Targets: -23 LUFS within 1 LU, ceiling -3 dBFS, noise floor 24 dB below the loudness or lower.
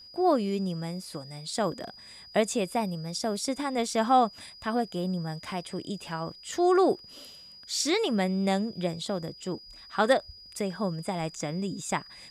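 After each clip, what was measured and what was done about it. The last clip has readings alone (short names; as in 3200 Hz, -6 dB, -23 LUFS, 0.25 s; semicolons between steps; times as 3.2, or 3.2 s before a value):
ticks 22/s; steady tone 4900 Hz; tone level -47 dBFS; loudness -29.0 LUFS; peak -11.0 dBFS; loudness target -23.0 LUFS
-> de-click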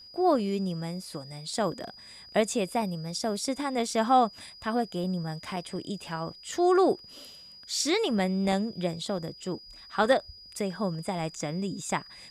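ticks 0/s; steady tone 4900 Hz; tone level -47 dBFS
-> notch 4900 Hz, Q 30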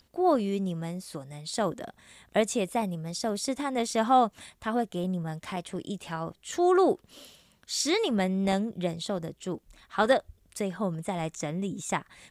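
steady tone none; loudness -29.5 LUFS; peak -10.0 dBFS; loudness target -23.0 LUFS
-> gain +6.5 dB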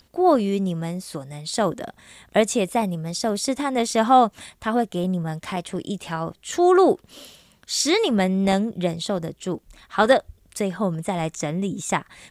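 loudness -23.0 LUFS; peak -3.5 dBFS; noise floor -59 dBFS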